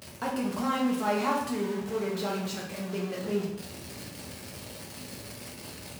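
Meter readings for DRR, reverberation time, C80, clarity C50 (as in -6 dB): -3.5 dB, 0.80 s, 6.5 dB, 3.0 dB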